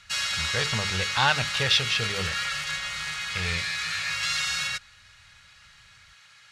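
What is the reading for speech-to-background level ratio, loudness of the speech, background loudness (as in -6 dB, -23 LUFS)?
0.5 dB, -27.0 LUFS, -27.5 LUFS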